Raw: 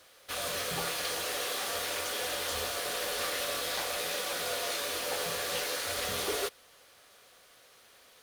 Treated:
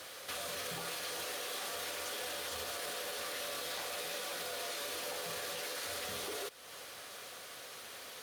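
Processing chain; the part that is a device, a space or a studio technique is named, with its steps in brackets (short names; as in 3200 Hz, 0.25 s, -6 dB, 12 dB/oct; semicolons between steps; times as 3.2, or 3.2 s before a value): podcast mastering chain (HPF 84 Hz; compressor 2.5:1, threshold -45 dBFS, peak gain reduction 11 dB; limiter -41.5 dBFS, peak gain reduction 11 dB; gain +10.5 dB; MP3 96 kbps 48000 Hz)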